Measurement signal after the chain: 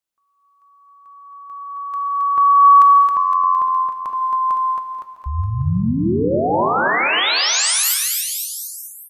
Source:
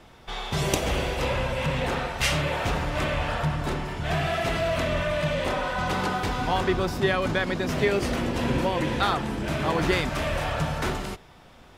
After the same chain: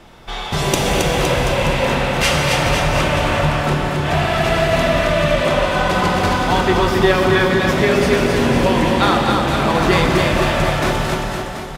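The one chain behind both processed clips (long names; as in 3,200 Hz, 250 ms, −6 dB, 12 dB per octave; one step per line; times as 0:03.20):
bouncing-ball delay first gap 270 ms, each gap 0.9×, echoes 5
reverb whose tail is shaped and stops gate 280 ms flat, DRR 3.5 dB
level +6.5 dB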